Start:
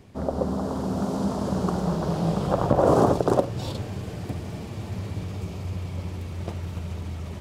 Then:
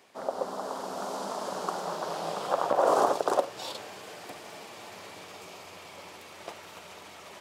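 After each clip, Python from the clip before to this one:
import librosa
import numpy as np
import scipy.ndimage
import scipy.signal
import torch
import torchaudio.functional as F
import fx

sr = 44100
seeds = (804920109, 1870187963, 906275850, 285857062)

y = scipy.signal.sosfilt(scipy.signal.butter(2, 680.0, 'highpass', fs=sr, output='sos'), x)
y = F.gain(torch.from_numpy(y), 1.0).numpy()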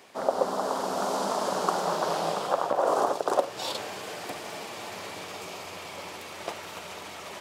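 y = fx.rider(x, sr, range_db=4, speed_s=0.5)
y = F.gain(torch.from_numpy(y), 2.5).numpy()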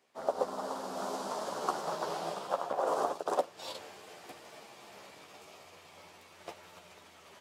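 y = fx.chorus_voices(x, sr, voices=2, hz=0.3, base_ms=13, depth_ms=1.8, mix_pct=35)
y = fx.upward_expand(y, sr, threshold_db=-51.0, expansion=1.5)
y = F.gain(torch.from_numpy(y), -2.0).numpy()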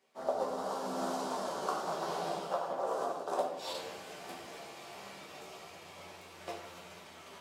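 y = fx.rider(x, sr, range_db=5, speed_s=0.5)
y = fx.room_shoebox(y, sr, seeds[0], volume_m3=180.0, walls='mixed', distance_m=1.1)
y = F.gain(torch.from_numpy(y), -4.5).numpy()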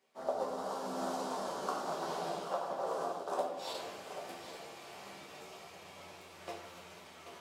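y = x + 10.0 ** (-11.0 / 20.0) * np.pad(x, (int(784 * sr / 1000.0), 0))[:len(x)]
y = F.gain(torch.from_numpy(y), -2.0).numpy()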